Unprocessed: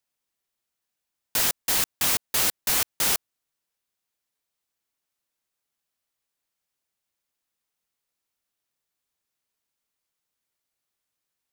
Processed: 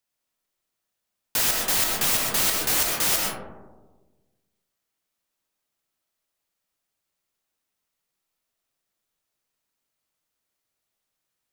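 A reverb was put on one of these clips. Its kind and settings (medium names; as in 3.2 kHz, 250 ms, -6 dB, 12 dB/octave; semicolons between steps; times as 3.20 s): algorithmic reverb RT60 1.3 s, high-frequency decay 0.25×, pre-delay 80 ms, DRR 0 dB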